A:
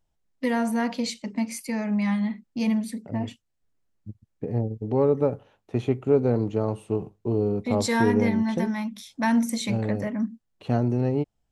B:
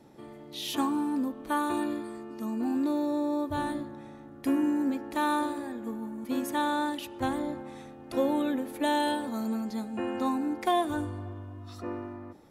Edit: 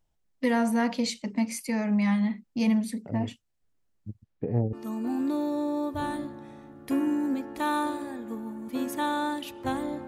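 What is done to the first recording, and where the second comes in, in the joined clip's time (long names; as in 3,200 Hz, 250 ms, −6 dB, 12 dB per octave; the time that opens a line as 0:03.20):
A
0:04.23–0:04.73: low-pass filter 6,500 Hz → 1,400 Hz
0:04.73: continue with B from 0:02.29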